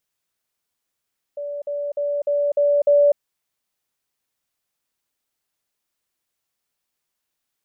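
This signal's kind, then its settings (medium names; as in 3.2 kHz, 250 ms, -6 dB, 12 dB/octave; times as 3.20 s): level ladder 578 Hz -26 dBFS, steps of 3 dB, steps 6, 0.25 s 0.05 s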